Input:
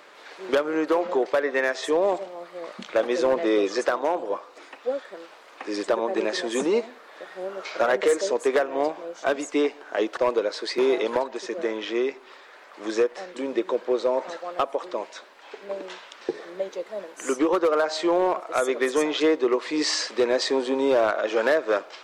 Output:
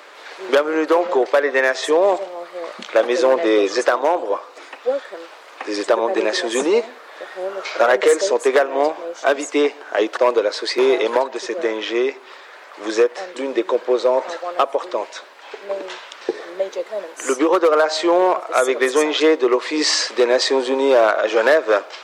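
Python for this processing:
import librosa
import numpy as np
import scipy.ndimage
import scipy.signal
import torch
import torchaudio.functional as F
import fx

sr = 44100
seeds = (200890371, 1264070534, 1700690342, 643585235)

y = scipy.signal.sosfilt(scipy.signal.butter(2, 330.0, 'highpass', fs=sr, output='sos'), x)
y = F.gain(torch.from_numpy(y), 7.5).numpy()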